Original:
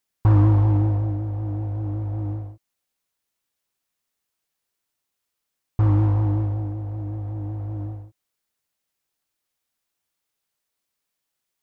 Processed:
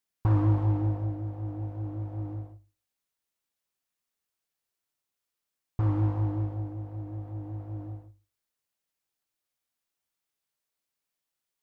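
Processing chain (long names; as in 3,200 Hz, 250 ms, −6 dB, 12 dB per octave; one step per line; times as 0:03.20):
mains-hum notches 50/100 Hz
on a send: convolution reverb RT60 0.35 s, pre-delay 10 ms, DRR 16 dB
on the sum: level −6 dB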